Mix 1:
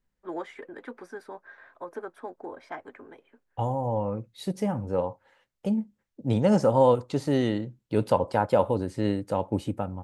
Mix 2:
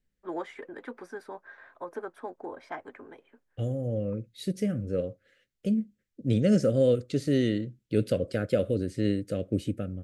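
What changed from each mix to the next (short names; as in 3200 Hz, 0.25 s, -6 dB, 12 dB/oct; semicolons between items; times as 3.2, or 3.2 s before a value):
second voice: add Butterworth band-stop 910 Hz, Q 0.87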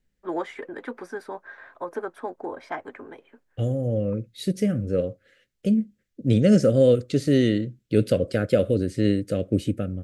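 first voice +6.0 dB; second voice +5.5 dB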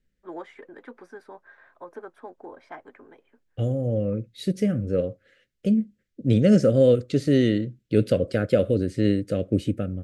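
first voice -8.5 dB; master: add high shelf 6600 Hz -6.5 dB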